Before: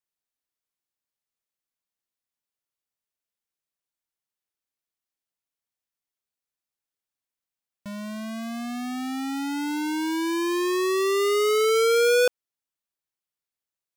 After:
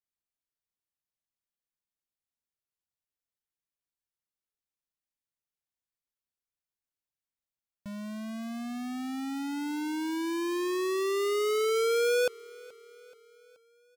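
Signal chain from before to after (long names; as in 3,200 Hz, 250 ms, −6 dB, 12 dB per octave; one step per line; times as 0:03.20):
low-shelf EQ 180 Hz +9 dB
on a send: repeating echo 428 ms, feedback 55%, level −23 dB
on the sum: level −7.5 dB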